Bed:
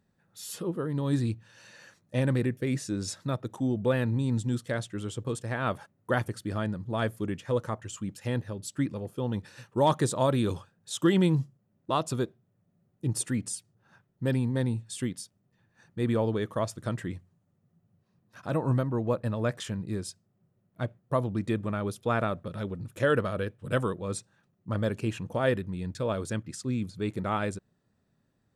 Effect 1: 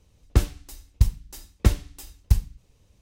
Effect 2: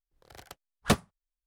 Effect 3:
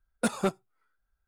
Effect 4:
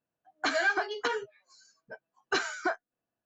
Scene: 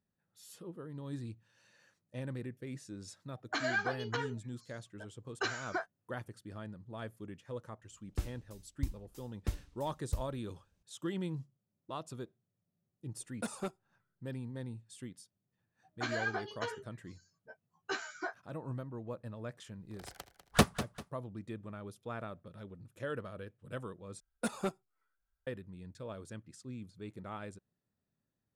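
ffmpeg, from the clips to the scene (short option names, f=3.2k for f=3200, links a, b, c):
-filter_complex "[4:a]asplit=2[a][b];[3:a]asplit=2[c][d];[0:a]volume=-14.5dB[e];[b]asplit=2[f][g];[g]adelay=13,volume=-2dB[h];[f][h]amix=inputs=2:normalize=0[i];[2:a]aecho=1:1:197|394|591:0.237|0.0759|0.0243[j];[e]asplit=2[k][l];[k]atrim=end=24.204[m];[d]atrim=end=1.27,asetpts=PTS-STARTPTS,volume=-8dB[n];[l]atrim=start=25.466[o];[a]atrim=end=3.25,asetpts=PTS-STARTPTS,volume=-6.5dB,afade=t=in:d=0.004:c=hsin,afade=t=out:st=3.246:d=0.004:c=hsin,adelay=136269S[p];[1:a]atrim=end=3.01,asetpts=PTS-STARTPTS,volume=-17dB,afade=t=in:d=0.004:c=hsin,afade=t=out:st=3.006:d=0.004:c=hsin,adelay=7820[q];[c]atrim=end=1.27,asetpts=PTS-STARTPTS,volume=-11.5dB,afade=t=in:d=0.004:c=hsin,afade=t=out:st=1.266:d=0.004:c=hsin,adelay=13190[r];[i]atrim=end=3.25,asetpts=PTS-STARTPTS,volume=-11dB,afade=t=in:d=0.004:c=hsin,afade=t=out:st=3.246:d=0.004:c=hsin,adelay=15570[s];[j]atrim=end=1.46,asetpts=PTS-STARTPTS,volume=-1dB,afade=t=in:d=0.004:c=hsin,afade=t=out:st=1.456:d=0.004:c=hsin,adelay=19690[t];[m][n]acrossfade=d=0.004:c1=hsin:c2=hsin[u];[u][o]acrossfade=d=0.004:c1=hsin:c2=hsin[v];[v][p][q][r][s][t]amix=inputs=6:normalize=0"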